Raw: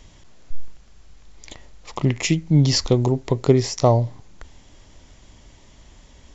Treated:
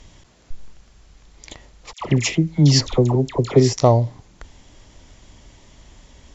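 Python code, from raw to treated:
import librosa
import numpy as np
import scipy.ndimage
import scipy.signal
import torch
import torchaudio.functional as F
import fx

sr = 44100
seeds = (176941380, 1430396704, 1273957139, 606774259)

y = fx.cheby_harmonics(x, sr, harmonics=(3,), levels_db=(-42,), full_scale_db=-2.5)
y = fx.dispersion(y, sr, late='lows', ms=80.0, hz=1200.0, at=(1.93, 3.73))
y = y * 10.0 ** (2.0 / 20.0)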